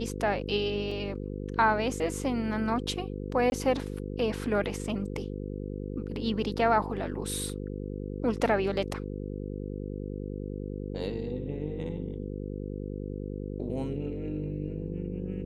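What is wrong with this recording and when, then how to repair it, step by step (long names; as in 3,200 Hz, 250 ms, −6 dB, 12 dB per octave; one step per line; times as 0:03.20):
mains buzz 50 Hz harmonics 10 −36 dBFS
0:00.91: drop-out 3.8 ms
0:03.50–0:03.52: drop-out 21 ms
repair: hum removal 50 Hz, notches 10
repair the gap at 0:00.91, 3.8 ms
repair the gap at 0:03.50, 21 ms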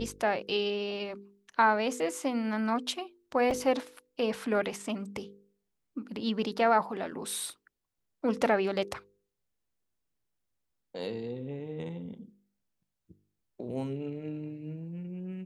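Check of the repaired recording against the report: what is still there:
none of them is left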